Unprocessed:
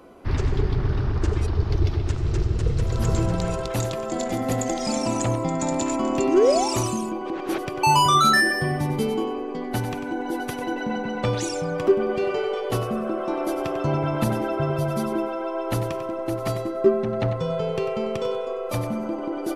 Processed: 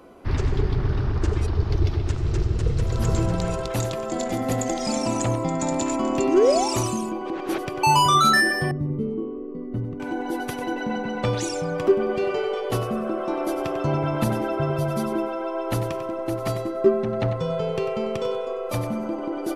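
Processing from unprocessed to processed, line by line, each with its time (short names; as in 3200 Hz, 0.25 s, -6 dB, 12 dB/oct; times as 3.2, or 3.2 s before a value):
8.71–10 running mean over 54 samples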